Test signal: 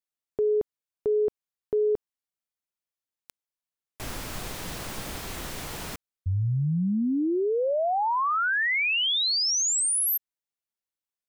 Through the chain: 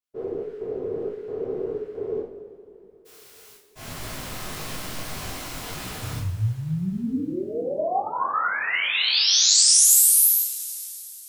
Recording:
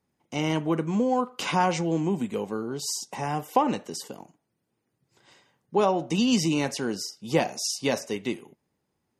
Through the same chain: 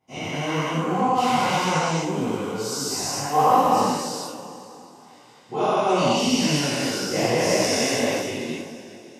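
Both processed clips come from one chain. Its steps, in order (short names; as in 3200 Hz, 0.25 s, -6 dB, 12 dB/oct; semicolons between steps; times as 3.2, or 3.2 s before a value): spectral dilation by 0.48 s; two-slope reverb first 0.45 s, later 3.5 s, from -18 dB, DRR -7 dB; detuned doubles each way 59 cents; gain -8 dB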